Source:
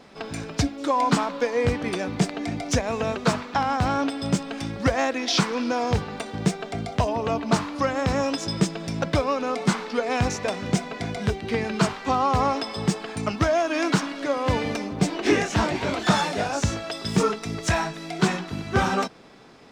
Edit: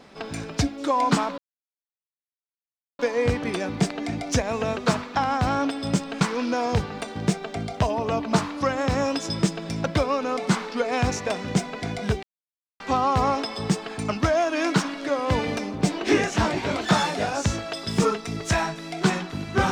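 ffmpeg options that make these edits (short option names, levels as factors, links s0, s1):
-filter_complex "[0:a]asplit=5[s0][s1][s2][s3][s4];[s0]atrim=end=1.38,asetpts=PTS-STARTPTS,afade=t=out:st=1.376:d=0.004:c=hsin,apad=pad_dur=1.61[s5];[s1]atrim=start=1.38:end=4.602,asetpts=PTS-STARTPTS,afade=t=in:d=0.004:c=hsin[s6];[s2]atrim=start=5.388:end=11.41,asetpts=PTS-STARTPTS,afade=t=out:st=6.018:d=0.004:c=hsin[s7];[s3]atrim=start=11.41:end=11.98,asetpts=PTS-STARTPTS,volume=0[s8];[s4]atrim=start=11.98,asetpts=PTS-STARTPTS,afade=t=in:d=0.004:c=hsin[s9];[s5][s6]concat=n=2:v=0:a=1[s10];[s7][s8][s9]concat=n=3:v=0:a=1[s11];[s10][s11]acrossfade=d=0.004:c1=hsin:c2=hsin"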